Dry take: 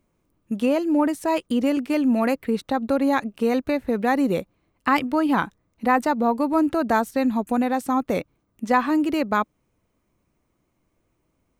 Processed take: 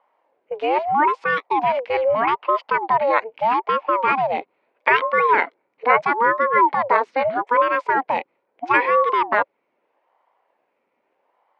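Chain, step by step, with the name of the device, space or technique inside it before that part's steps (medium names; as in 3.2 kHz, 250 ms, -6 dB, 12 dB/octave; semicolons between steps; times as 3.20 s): voice changer toy (ring modulator with a swept carrier 520 Hz, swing 60%, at 0.78 Hz; cabinet simulation 420–3800 Hz, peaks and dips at 540 Hz +4 dB, 970 Hz +7 dB, 2.2 kHz +8 dB, 3.5 kHz -4 dB); trim +4 dB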